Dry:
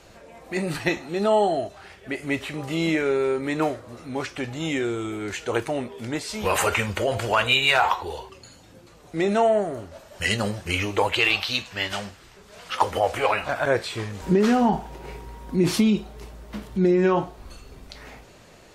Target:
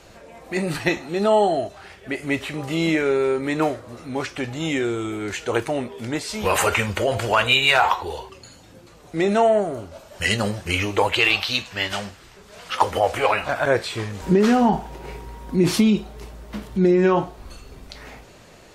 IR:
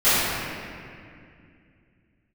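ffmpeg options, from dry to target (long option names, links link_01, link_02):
-filter_complex "[0:a]asettb=1/sr,asplit=3[link_01][link_02][link_03];[link_01]atrim=end=9.604[link_04];[link_02]atrim=start=9.6:end=10.1,asetpts=PTS-STARTPTS,afade=type=in:duration=0.004:curve=qsin,afade=type=out:start_time=0.496:duration=0.004:curve=qsin,bandreject=frequency=1800:width=6.6[link_05];[link_03]atrim=start=10.096[link_06];[link_04][link_05]acrossfade=duration=0.004:curve1=hsin:curve2=qsin[link_07];[link_07][link_06]acrossfade=duration=0.004:curve1=qsin:curve2=hsin,volume=2.5dB"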